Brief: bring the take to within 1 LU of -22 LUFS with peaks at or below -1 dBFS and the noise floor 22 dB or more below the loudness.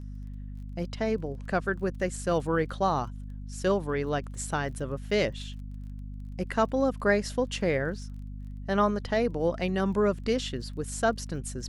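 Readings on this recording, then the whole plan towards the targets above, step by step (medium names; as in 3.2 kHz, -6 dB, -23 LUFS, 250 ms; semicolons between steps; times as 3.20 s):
tick rate 22 per s; hum 50 Hz; highest harmonic 250 Hz; hum level -36 dBFS; loudness -29.0 LUFS; peak level -11.0 dBFS; loudness target -22.0 LUFS
-> de-click; de-hum 50 Hz, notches 5; trim +7 dB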